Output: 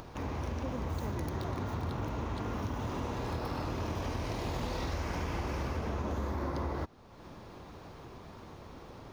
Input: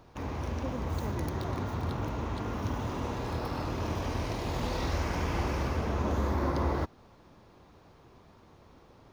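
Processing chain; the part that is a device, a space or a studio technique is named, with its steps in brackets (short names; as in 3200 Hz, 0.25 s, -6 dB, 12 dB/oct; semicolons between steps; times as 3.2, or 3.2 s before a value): upward and downward compression (upward compressor, threshold -39 dBFS; compressor, threshold -31 dBFS, peak gain reduction 7 dB)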